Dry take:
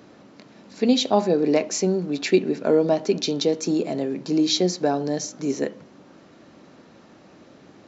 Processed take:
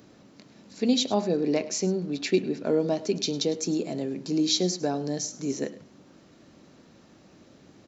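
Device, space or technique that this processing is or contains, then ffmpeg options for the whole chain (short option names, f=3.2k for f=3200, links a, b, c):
smiley-face EQ: -filter_complex "[0:a]lowshelf=f=94:g=8.5,equalizer=f=1k:t=o:w=2.5:g=-3.5,highshelf=f=6.2k:g=9,asettb=1/sr,asplit=3[a][b][c];[a]atrim=end=1.044[d];[b]atrim=start=1.04:end=2.79,asetpts=PTS-STARTPTS,afade=t=in:d=0.004:c=qsin,afade=t=out:st=1.746:d=0.004:c=qsin,lowpass=6.3k[e];[c]atrim=start=2.786[f];[d][e]acrossfade=d=0.004:c1=hsin:c2=qsin[g];[g][f]acrossfade=d=0.004:c1=qsin:c2=hsin,aecho=1:1:103:0.133,volume=-4.5dB"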